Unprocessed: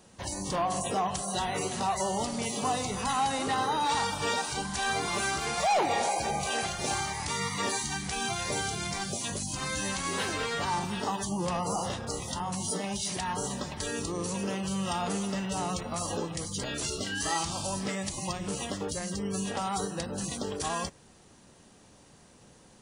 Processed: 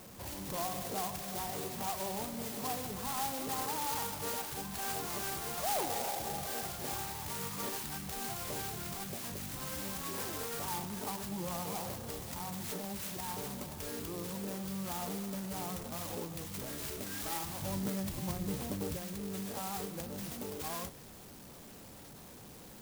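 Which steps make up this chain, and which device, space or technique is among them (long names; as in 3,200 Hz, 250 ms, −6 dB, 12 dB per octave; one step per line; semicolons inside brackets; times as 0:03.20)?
0:17.62–0:18.97: low-shelf EQ 380 Hz +9 dB
early CD player with a faulty converter (converter with a step at zero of −38 dBFS; converter with an unsteady clock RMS 0.13 ms)
level −9 dB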